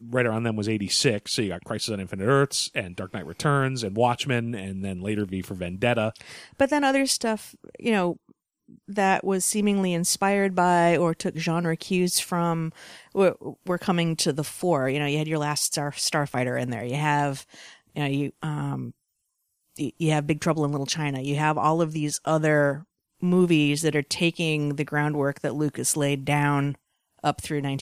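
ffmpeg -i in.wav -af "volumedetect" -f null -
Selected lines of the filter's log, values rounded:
mean_volume: -25.2 dB
max_volume: -7.7 dB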